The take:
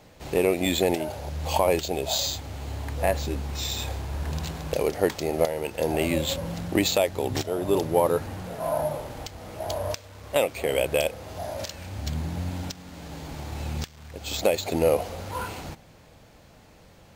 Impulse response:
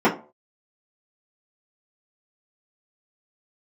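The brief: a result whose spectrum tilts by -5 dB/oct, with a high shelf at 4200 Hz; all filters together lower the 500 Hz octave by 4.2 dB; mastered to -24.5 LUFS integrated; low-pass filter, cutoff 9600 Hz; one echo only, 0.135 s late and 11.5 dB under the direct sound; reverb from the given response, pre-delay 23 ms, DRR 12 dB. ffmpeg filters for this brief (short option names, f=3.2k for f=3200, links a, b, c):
-filter_complex "[0:a]lowpass=9.6k,equalizer=f=500:t=o:g=-5,highshelf=f=4.2k:g=-4.5,aecho=1:1:135:0.266,asplit=2[a][b];[1:a]atrim=start_sample=2205,adelay=23[c];[b][c]afir=irnorm=-1:irlink=0,volume=-32.5dB[d];[a][d]amix=inputs=2:normalize=0,volume=5dB"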